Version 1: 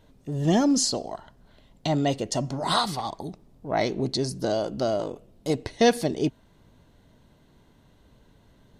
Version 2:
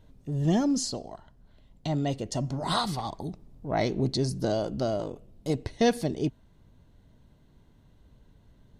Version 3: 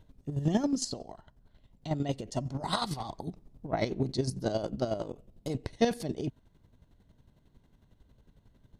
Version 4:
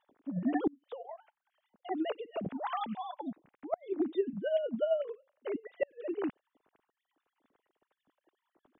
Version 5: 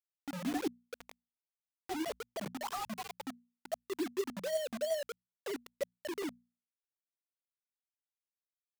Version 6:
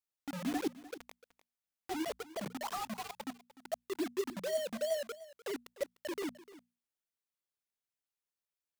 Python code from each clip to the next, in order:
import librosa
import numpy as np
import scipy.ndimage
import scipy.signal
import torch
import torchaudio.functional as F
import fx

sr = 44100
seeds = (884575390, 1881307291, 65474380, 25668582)

y1 = fx.low_shelf(x, sr, hz=180.0, db=10.0)
y1 = fx.rider(y1, sr, range_db=10, speed_s=2.0)
y1 = y1 * librosa.db_to_amplitude(-7.0)
y2 = fx.chopper(y1, sr, hz=11.0, depth_pct=60, duty_pct=30)
y3 = fx.sine_speech(y2, sr)
y3 = fx.gate_flip(y3, sr, shuts_db=-19.0, range_db=-35)
y4 = fx.spec_gate(y3, sr, threshold_db=-20, keep='strong')
y4 = fx.quant_dither(y4, sr, seeds[0], bits=6, dither='none')
y4 = fx.hum_notches(y4, sr, base_hz=60, count=4)
y4 = y4 * librosa.db_to_amplitude(-4.5)
y5 = y4 + 10.0 ** (-17.5 / 20.0) * np.pad(y4, (int(300 * sr / 1000.0), 0))[:len(y4)]